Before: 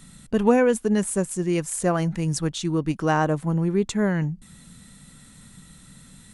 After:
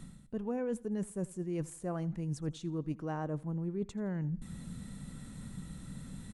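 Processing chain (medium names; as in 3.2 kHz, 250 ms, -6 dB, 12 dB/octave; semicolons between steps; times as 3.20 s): tilt shelf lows +6 dB, about 1.1 kHz; reverse; compression 5:1, threshold -34 dBFS, peak gain reduction 23 dB; reverse; feedback delay 83 ms, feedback 39%, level -22 dB; trim -1.5 dB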